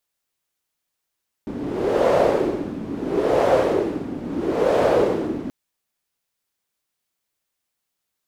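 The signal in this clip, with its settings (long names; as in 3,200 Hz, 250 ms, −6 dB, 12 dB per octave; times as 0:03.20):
wind from filtered noise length 4.03 s, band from 260 Hz, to 560 Hz, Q 3.5, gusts 3, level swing 12 dB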